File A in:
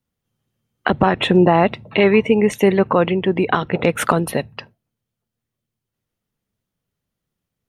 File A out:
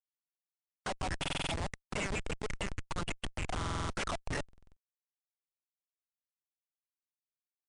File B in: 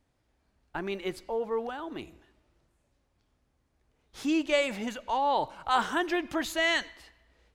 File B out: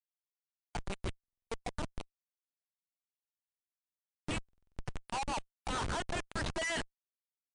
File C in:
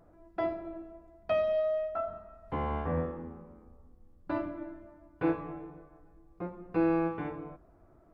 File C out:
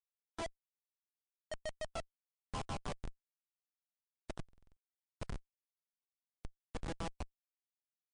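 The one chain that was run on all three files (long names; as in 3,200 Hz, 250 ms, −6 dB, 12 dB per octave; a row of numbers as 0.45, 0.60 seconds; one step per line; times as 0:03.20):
dynamic equaliser 190 Hz, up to +5 dB, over −31 dBFS, Q 2.2
downward compressor 12 to 1, threshold −21 dBFS
auto-filter high-pass saw down 6.5 Hz 600–3,000 Hz
downsampling to 16,000 Hz
comparator with hysteresis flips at −30 dBFS
buffer that repeats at 0:01.19/0:03.57/0:04.44, samples 2,048, times 6
level −1 dB
MP3 80 kbit/s 22,050 Hz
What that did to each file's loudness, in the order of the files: −21.0, −10.0, −13.5 LU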